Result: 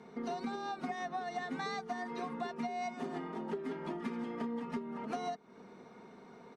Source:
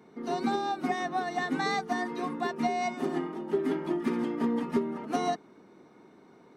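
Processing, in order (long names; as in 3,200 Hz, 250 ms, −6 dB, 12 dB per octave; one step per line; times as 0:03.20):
low-pass filter 7,800 Hz 12 dB per octave
parametric band 300 Hz −12.5 dB 0.23 octaves
comb filter 4.3 ms, depth 30%
downward compressor 6 to 1, threshold −39 dBFS, peak gain reduction 16 dB
level +2.5 dB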